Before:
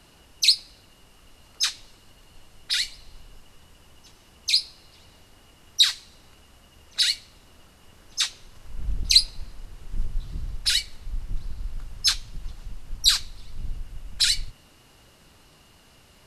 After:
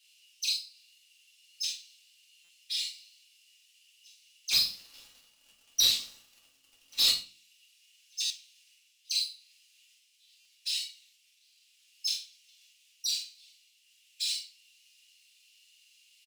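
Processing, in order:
running median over 3 samples
flanger 0.59 Hz, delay 7.7 ms, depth 2.2 ms, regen −87%
downward compressor 2 to 1, threshold −35 dBFS, peak gain reduction 11 dB
Chebyshev high-pass filter 2,600 Hz, order 4
double-tracking delay 46 ms −4 dB
0:04.51–0:07.11: leveller curve on the samples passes 3
single-tap delay 90 ms −19 dB
convolution reverb, pre-delay 3 ms, DRR −4 dB
buffer that repeats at 0:02.44/0:08.25/0:10.40, samples 256, times 8
level −3.5 dB

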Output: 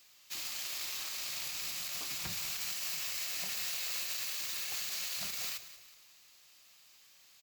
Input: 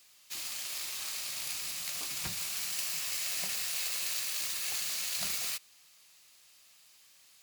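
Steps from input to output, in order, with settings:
parametric band 9,500 Hz −11 dB 0.29 octaves
brickwall limiter −27 dBFS, peak gain reduction 9.5 dB
on a send: echo with shifted repeats 184 ms, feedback 44%, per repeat −30 Hz, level −14 dB

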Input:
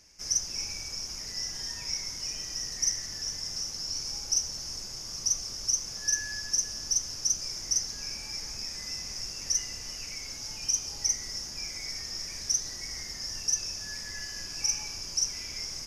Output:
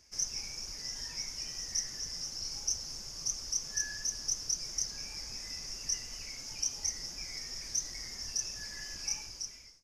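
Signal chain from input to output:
fade-out on the ending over 1.25 s
flanger 1.8 Hz, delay 0.1 ms, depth 8.6 ms, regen −2%
phase-vocoder stretch with locked phases 0.62×

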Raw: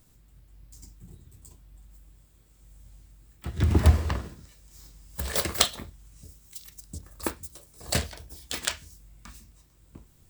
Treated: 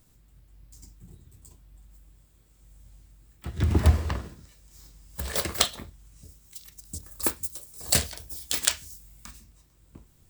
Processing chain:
0:06.85–0:09.31: high-shelf EQ 4,400 Hz +11 dB
level −1 dB

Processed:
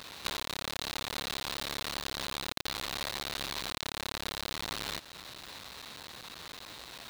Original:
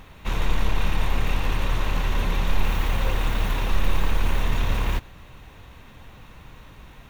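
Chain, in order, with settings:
each half-wave held at its own peak
high-pass filter 1,000 Hz 6 dB per octave
parametric band 4,000 Hz +11 dB 0.46 octaves
downward compressor 6 to 1, threshold −33 dBFS, peak gain reduction 11 dB
level +2 dB

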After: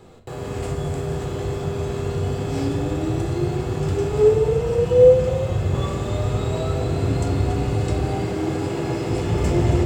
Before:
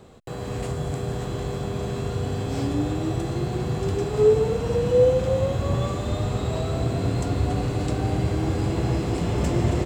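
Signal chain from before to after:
0:04.31–0:05.75: notch comb filter 280 Hz
0:08.05–0:09.10: high-pass filter 150 Hz 12 dB per octave
convolution reverb RT60 0.65 s, pre-delay 8 ms, DRR 3 dB

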